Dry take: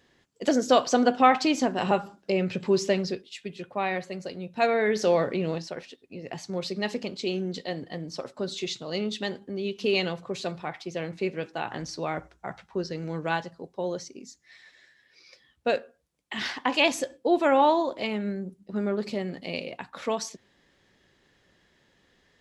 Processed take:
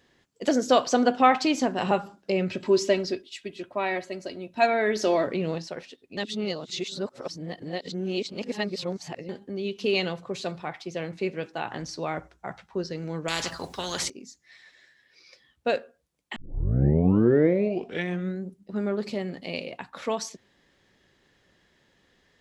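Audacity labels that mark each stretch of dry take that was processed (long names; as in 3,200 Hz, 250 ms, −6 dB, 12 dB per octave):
2.500000	5.270000	comb filter 3.1 ms, depth 58%
6.170000	9.290000	reverse
13.280000	14.100000	every bin compressed towards the loudest bin 4 to 1
16.360000	16.360000	tape start 2.09 s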